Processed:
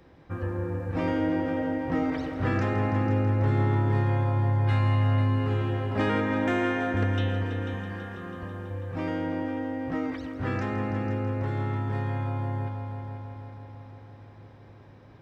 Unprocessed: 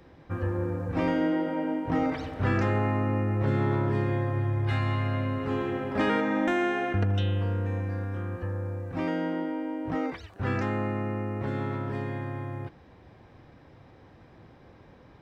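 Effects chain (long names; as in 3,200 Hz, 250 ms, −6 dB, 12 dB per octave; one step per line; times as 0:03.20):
0:07.73–0:08.71: comb filter 4.9 ms, depth 59%
echo machine with several playback heads 164 ms, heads all three, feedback 63%, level −13.5 dB
level −1.5 dB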